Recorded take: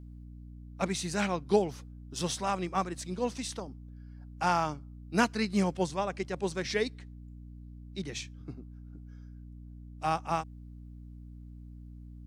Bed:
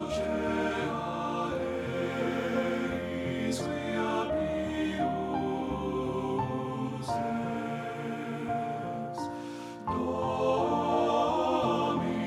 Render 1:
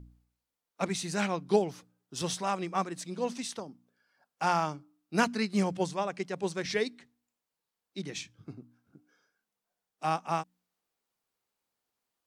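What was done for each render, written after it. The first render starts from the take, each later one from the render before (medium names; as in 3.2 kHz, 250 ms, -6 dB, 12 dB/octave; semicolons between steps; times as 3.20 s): de-hum 60 Hz, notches 5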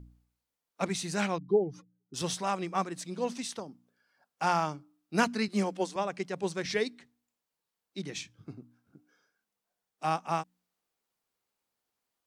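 1.38–2.14 s: spectral contrast enhancement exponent 2; 5.48–5.96 s: elliptic high-pass 200 Hz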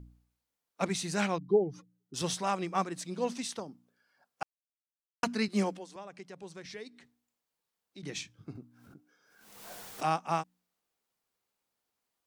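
4.43–5.23 s: mute; 5.78–8.03 s: compression 2:1, threshold -52 dBFS; 8.55–10.08 s: swell ahead of each attack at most 50 dB/s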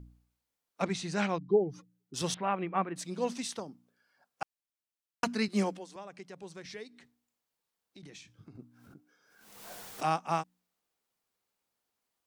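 0.82–1.69 s: distance through air 76 m; 2.34–2.96 s: steep low-pass 2.9 kHz; 6.83–8.59 s: compression, threshold -47 dBFS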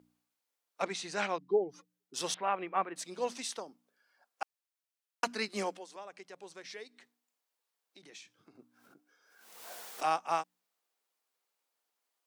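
high-pass 410 Hz 12 dB/octave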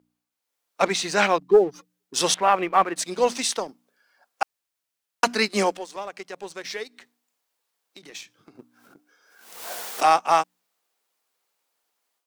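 level rider gain up to 10 dB; waveshaping leveller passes 1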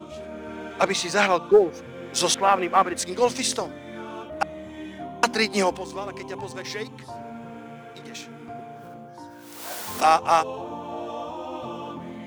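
add bed -6.5 dB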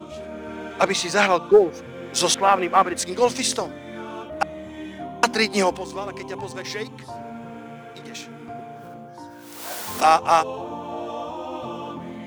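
trim +2 dB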